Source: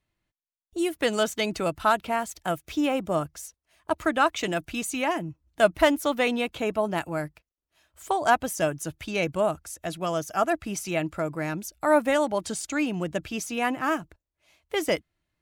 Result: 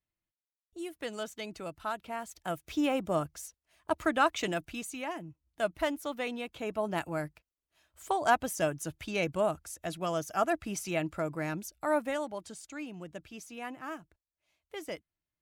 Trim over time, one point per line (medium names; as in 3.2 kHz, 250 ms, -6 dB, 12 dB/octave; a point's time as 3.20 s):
1.94 s -13.5 dB
2.79 s -4 dB
4.46 s -4 dB
4.98 s -11 dB
6.48 s -11 dB
6.98 s -4.5 dB
11.54 s -4.5 dB
12.56 s -14.5 dB